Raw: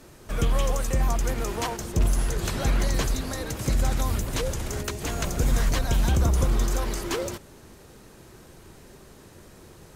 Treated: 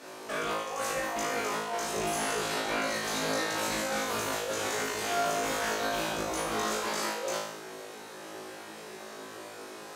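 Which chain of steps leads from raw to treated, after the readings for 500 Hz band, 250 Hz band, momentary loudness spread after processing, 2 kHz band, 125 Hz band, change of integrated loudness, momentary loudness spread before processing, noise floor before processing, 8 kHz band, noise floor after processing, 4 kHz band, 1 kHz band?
0.0 dB, -6.0 dB, 14 LU, +3.5 dB, -21.0 dB, -4.0 dB, 7 LU, -50 dBFS, -1.0 dB, -45 dBFS, +1.0 dB, +2.5 dB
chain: high-pass 440 Hz 12 dB/octave; treble shelf 7.1 kHz -10.5 dB; compressor with a negative ratio -36 dBFS, ratio -0.5; peak limiter -29.5 dBFS, peak gain reduction 8 dB; flutter echo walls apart 3.2 m, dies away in 0.79 s; trim +3 dB

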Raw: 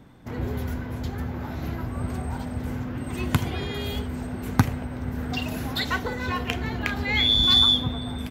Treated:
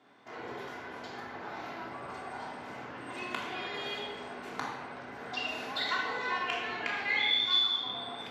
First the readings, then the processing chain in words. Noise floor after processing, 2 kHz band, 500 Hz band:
-45 dBFS, -2.5 dB, -6.5 dB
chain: compression 4:1, threshold -25 dBFS, peak gain reduction 11.5 dB; band-pass 580–5400 Hz; simulated room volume 1100 m³, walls mixed, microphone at 3.2 m; trim -6.5 dB

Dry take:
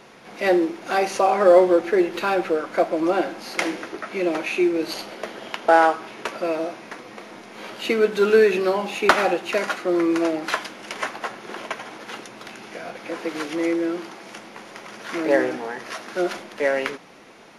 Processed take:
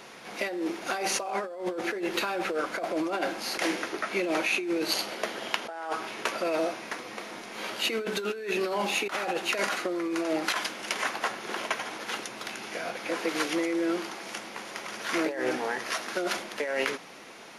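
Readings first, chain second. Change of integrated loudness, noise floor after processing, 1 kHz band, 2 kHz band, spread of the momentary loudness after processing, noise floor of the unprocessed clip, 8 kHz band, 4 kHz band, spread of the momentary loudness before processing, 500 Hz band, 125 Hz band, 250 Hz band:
-8.5 dB, -43 dBFS, -9.0 dB, -4.0 dB, 9 LU, -44 dBFS, +2.5 dB, +0.5 dB, 21 LU, -11.0 dB, -7.5 dB, -8.0 dB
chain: tilt EQ +1.5 dB/octave; compressor with a negative ratio -26 dBFS, ratio -1; trim -3.5 dB

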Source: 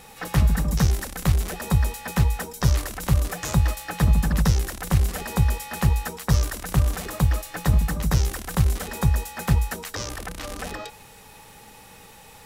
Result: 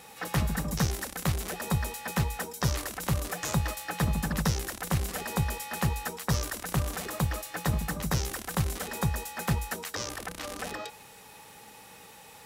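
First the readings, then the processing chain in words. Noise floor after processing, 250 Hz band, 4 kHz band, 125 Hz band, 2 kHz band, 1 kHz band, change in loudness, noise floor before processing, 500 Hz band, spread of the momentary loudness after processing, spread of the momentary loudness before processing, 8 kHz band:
-51 dBFS, -5.5 dB, -2.5 dB, -8.5 dB, -2.5 dB, -2.5 dB, -7.0 dB, -47 dBFS, -3.0 dB, 13 LU, 9 LU, -2.5 dB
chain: high-pass 180 Hz 6 dB/octave; trim -2.5 dB

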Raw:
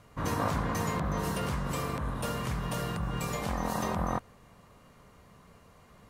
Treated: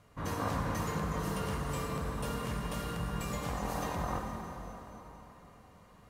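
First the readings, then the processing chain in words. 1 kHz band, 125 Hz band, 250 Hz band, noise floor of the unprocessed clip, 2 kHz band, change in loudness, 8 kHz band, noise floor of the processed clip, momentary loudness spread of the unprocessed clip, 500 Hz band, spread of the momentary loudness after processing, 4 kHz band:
-3.5 dB, -3.5 dB, -3.5 dB, -58 dBFS, -3.5 dB, -3.5 dB, -3.5 dB, -58 dBFS, 3 LU, -3.0 dB, 15 LU, -3.0 dB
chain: plate-style reverb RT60 4 s, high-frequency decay 0.8×, DRR 1.5 dB; trim -5.5 dB

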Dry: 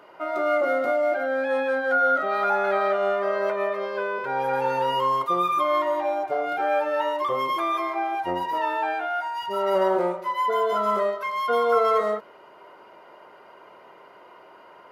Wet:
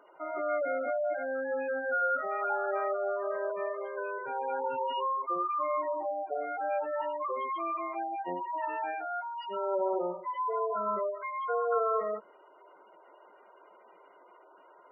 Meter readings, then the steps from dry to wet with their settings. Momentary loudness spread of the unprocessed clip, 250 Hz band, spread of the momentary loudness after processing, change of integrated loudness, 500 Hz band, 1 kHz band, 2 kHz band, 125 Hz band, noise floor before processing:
6 LU, -10.0 dB, 6 LU, -8.5 dB, -8.0 dB, -8.5 dB, -9.5 dB, under -15 dB, -50 dBFS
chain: spectral gate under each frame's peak -15 dB strong; trim -8 dB

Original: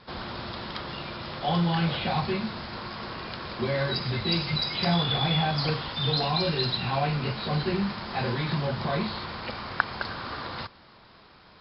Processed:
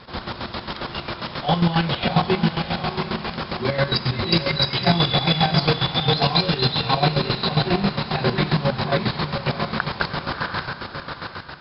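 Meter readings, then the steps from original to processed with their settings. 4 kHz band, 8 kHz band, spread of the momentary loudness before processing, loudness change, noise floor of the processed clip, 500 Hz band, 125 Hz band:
+7.0 dB, no reading, 11 LU, +6.5 dB, -37 dBFS, +7.0 dB, +6.5 dB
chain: echo that smears into a reverb 701 ms, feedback 41%, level -4.5 dB; square tremolo 7.4 Hz, depth 65%, duty 40%; trim +8.5 dB

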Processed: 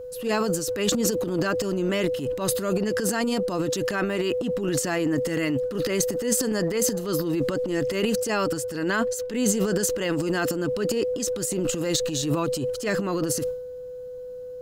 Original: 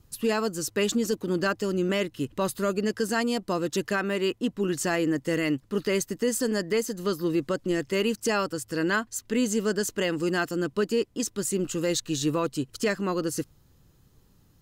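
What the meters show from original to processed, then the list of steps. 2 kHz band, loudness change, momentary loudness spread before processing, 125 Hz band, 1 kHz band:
0.0 dB, +2.0 dB, 3 LU, +3.0 dB, +0.5 dB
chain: whistle 500 Hz -35 dBFS; transient shaper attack -8 dB, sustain +11 dB; trim +1 dB

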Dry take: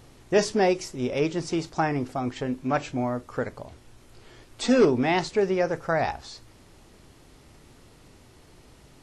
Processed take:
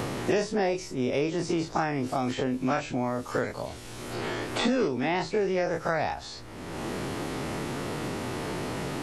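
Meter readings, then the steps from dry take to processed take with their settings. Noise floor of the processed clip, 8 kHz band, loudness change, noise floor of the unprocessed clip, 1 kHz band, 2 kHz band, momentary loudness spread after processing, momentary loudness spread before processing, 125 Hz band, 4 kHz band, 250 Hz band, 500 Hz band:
-42 dBFS, -1.0 dB, -4.0 dB, -54 dBFS, -1.5 dB, -0.5 dB, 9 LU, 12 LU, -0.5 dB, +0.5 dB, -1.5 dB, -3.0 dB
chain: every event in the spectrogram widened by 60 ms; three bands compressed up and down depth 100%; trim -5.5 dB

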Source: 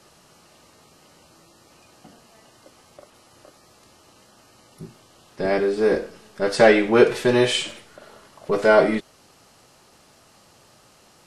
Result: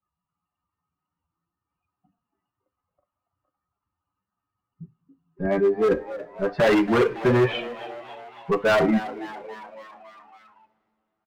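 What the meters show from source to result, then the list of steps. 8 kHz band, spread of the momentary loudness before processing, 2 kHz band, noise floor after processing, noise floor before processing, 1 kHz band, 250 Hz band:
under -10 dB, 13 LU, -4.0 dB, under -85 dBFS, -55 dBFS, -2.0 dB, -0.5 dB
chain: expander on every frequency bin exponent 2; low-pass 2 kHz 24 dB/octave; bass shelf 70 Hz -6 dB; in parallel at +1.5 dB: compressor with a negative ratio -21 dBFS, ratio -1; on the sum: hard clipper -16 dBFS, distortion -8 dB; on a send: frequency-shifting echo 279 ms, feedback 62%, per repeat +110 Hz, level -15.5 dB; on the sum: two-slope reverb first 0.25 s, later 3.1 s, from -21 dB, DRR 12 dB

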